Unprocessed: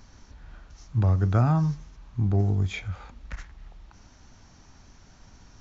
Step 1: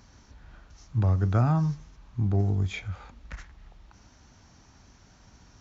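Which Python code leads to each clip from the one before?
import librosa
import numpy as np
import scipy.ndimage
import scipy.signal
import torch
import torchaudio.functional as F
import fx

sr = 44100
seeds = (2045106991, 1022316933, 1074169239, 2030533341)

y = scipy.signal.sosfilt(scipy.signal.butter(2, 41.0, 'highpass', fs=sr, output='sos'), x)
y = y * 10.0 ** (-1.5 / 20.0)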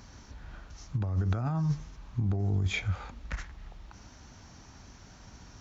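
y = fx.over_compress(x, sr, threshold_db=-28.0, ratio=-1.0)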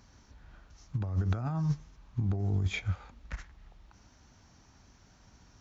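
y = fx.upward_expand(x, sr, threshold_db=-41.0, expansion=1.5)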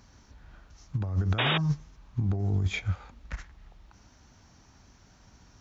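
y = fx.spec_paint(x, sr, seeds[0], shape='noise', start_s=1.38, length_s=0.2, low_hz=220.0, high_hz=3800.0, level_db=-29.0)
y = y * 10.0 ** (2.5 / 20.0)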